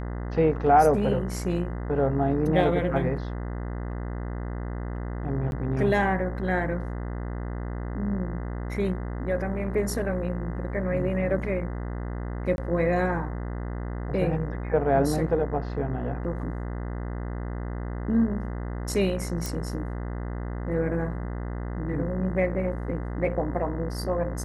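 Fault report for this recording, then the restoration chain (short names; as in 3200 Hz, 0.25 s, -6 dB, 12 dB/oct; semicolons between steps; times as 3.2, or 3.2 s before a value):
buzz 60 Hz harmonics 34 -32 dBFS
5.51–5.52 gap 11 ms
12.56–12.58 gap 21 ms
19.46 pop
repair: de-click; de-hum 60 Hz, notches 34; interpolate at 5.51, 11 ms; interpolate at 12.56, 21 ms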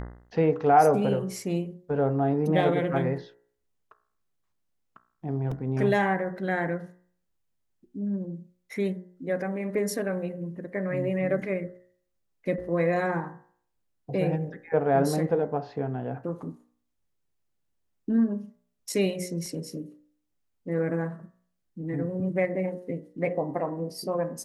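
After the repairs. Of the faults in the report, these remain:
none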